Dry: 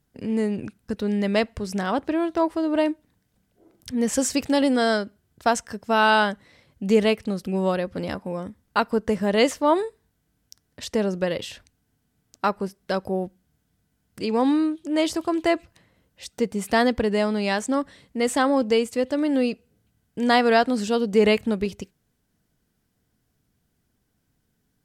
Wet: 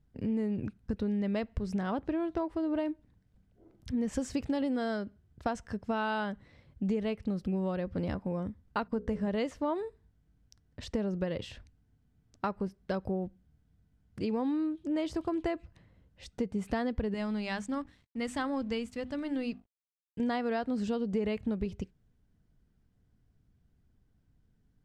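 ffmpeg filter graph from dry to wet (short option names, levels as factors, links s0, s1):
-filter_complex "[0:a]asettb=1/sr,asplit=3[s0][s1][s2];[s0]atrim=end=8.834[s3];[s1]atrim=start=8.83:end=9.28,asetpts=PTS-STARTPTS,afade=t=in:d=0.004:c=qsin,afade=t=out:st=0.446:d=0.004:c=qsin,agate=range=0.2:threshold=0.00398:ratio=16:release=100:detection=peak,bandreject=f=60:t=h:w=6,bandreject=f=120:t=h:w=6,bandreject=f=180:t=h:w=6,bandreject=f=240:t=h:w=6,bandreject=f=300:t=h:w=6,bandreject=f=360:t=h:w=6,bandreject=f=420:t=h:w=6,bandreject=f=480:t=h:w=6,bandreject=f=540:t=h:w=6,bandreject=f=600:t=h:w=6[s4];[s2]atrim=start=9.276[s5];[s3][s4]acrossfade=d=0.004:c1=hsin:c2=qsin[s6];[s6][s5]acrossfade=d=0.004:c1=qsin:c2=hsin,asettb=1/sr,asplit=3[s7][s8][s9];[s7]atrim=end=17.144[s10];[s8]atrim=start=17.14:end=20.2,asetpts=PTS-STARTPTS,afade=t=in:d=0.004:c=qsin,afade=t=out:st=3.056:d=0.004:c=qsin,equalizer=f=450:w=0.66:g=-9.5,bandreject=f=50:t=h:w=6,bandreject=f=100:t=h:w=6,bandreject=f=150:t=h:w=6,bandreject=f=200:t=h:w=6,bandreject=f=250:t=h:w=6,bandreject=f=300:t=h:w=6,bandreject=f=350:t=h:w=6,aeval=exprs='sgn(val(0))*max(abs(val(0))-0.00178,0)':c=same[s11];[s9]atrim=start=20.196[s12];[s10][s11]acrossfade=d=0.004:c1=hsin:c2=qsin[s13];[s13][s12]acrossfade=d=0.004:c1=qsin:c2=hsin,aemphasis=mode=reproduction:type=bsi,acompressor=threshold=0.0794:ratio=6,volume=0.473"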